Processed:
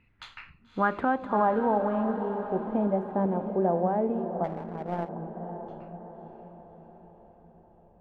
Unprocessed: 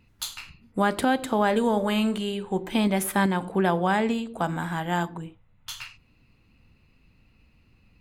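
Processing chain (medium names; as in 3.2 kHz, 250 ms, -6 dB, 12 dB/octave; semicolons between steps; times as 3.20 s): low-pass sweep 2.2 kHz -> 620 Hz, 0.10–2.21 s; echo that smears into a reverb 584 ms, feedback 54%, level -9 dB; 4.44–5.09 s: power-law waveshaper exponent 1.4; trim -5.5 dB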